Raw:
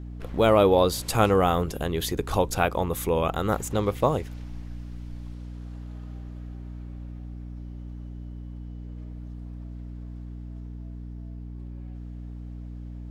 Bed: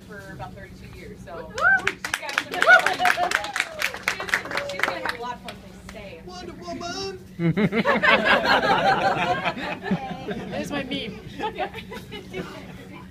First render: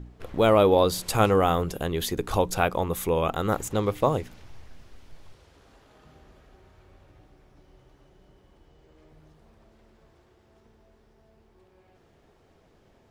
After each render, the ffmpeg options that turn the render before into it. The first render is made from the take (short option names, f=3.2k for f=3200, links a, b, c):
-af "bandreject=f=60:t=h:w=4,bandreject=f=120:t=h:w=4,bandreject=f=180:t=h:w=4,bandreject=f=240:t=h:w=4,bandreject=f=300:t=h:w=4"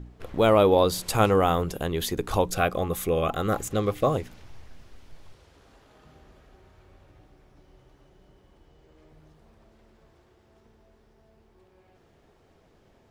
-filter_complex "[0:a]asettb=1/sr,asplit=3[a][b][c];[a]atrim=end=2.514[d];[b]atrim=start=2.51:end=4.16,asetpts=PTS-STARTPTS,afade=t=in:d=0.004:c=qsin,afade=t=out:st=1.646:d=0.004:c=qsin,asuperstop=centerf=920:order=20:qfactor=5.7[e];[c]atrim=start=4.156[f];[d][e]acrossfade=d=0.004:c1=hsin:c2=qsin[g];[g][f]acrossfade=d=0.004:c1=qsin:c2=hsin"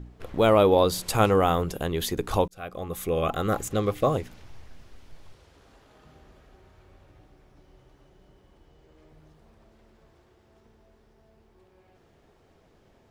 -filter_complex "[0:a]asplit=2[a][b];[a]atrim=end=2.48,asetpts=PTS-STARTPTS,afade=t=out:st=2.476:d=0.004:c=hsin[c];[b]atrim=start=2.48,asetpts=PTS-STARTPTS,afade=t=in:d=0.78[d];[c][d]concat=n=2:v=0:a=1"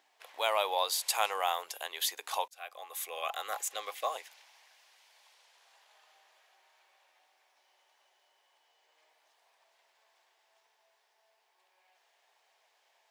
-af "highpass=f=840:w=0.5412,highpass=f=840:w=1.3066,equalizer=f=1.3k:w=2.7:g=-10"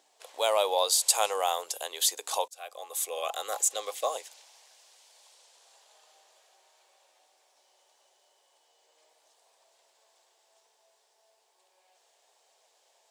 -af "equalizer=f=250:t=o:w=1:g=4,equalizer=f=500:t=o:w=1:g=8,equalizer=f=2k:t=o:w=1:g=-5,equalizer=f=4k:t=o:w=1:g=3,equalizer=f=8k:t=o:w=1:g=12"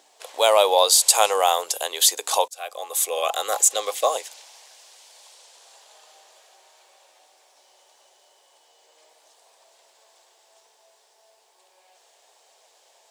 -af "volume=9dB,alimiter=limit=-3dB:level=0:latency=1"